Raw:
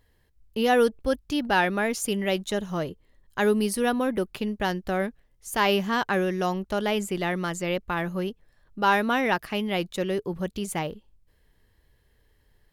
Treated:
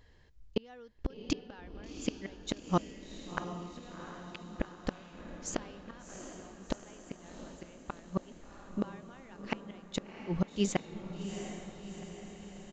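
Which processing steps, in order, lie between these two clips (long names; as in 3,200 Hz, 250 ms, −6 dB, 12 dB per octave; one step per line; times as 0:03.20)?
downsampling to 16,000 Hz
gate with flip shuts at −20 dBFS, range −35 dB
feedback delay with all-pass diffusion 729 ms, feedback 59%, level −8.5 dB
level +3.5 dB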